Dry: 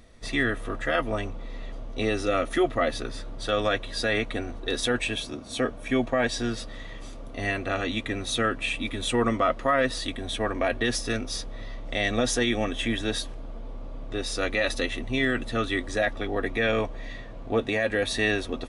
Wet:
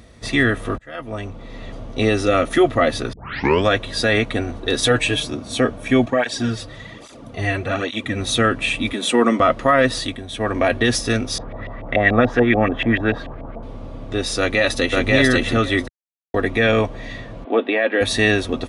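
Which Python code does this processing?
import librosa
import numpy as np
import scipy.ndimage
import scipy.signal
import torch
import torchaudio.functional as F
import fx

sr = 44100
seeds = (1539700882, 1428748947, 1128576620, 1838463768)

y = fx.comb(x, sr, ms=6.6, depth=0.65, at=(4.81, 5.28))
y = fx.flanger_cancel(y, sr, hz=1.2, depth_ms=5.2, at=(6.05, 8.17), fade=0.02)
y = fx.steep_highpass(y, sr, hz=180.0, slope=36, at=(8.92, 9.4))
y = fx.filter_lfo_lowpass(y, sr, shape='saw_up', hz=6.9, low_hz=640.0, high_hz=2500.0, q=2.6, at=(11.38, 13.63))
y = fx.echo_throw(y, sr, start_s=14.38, length_s=0.67, ms=540, feedback_pct=15, wet_db=-0.5)
y = fx.ellip_bandpass(y, sr, low_hz=270.0, high_hz=3300.0, order=3, stop_db=40, at=(17.44, 18.01))
y = fx.edit(y, sr, fx.fade_in_span(start_s=0.78, length_s=0.95),
    fx.tape_start(start_s=3.13, length_s=0.52),
    fx.fade_down_up(start_s=9.98, length_s=0.58, db=-10.0, fade_s=0.29),
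    fx.silence(start_s=15.88, length_s=0.46), tone=tone)
y = scipy.signal.sosfilt(scipy.signal.butter(2, 85.0, 'highpass', fs=sr, output='sos'), y)
y = fx.low_shelf(y, sr, hz=110.0, db=11.0)
y = y * 10.0 ** (7.5 / 20.0)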